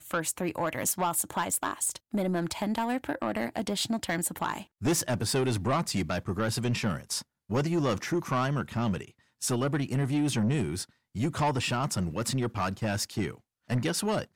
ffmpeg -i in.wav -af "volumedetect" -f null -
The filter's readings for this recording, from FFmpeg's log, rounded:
mean_volume: -30.0 dB
max_volume: -21.2 dB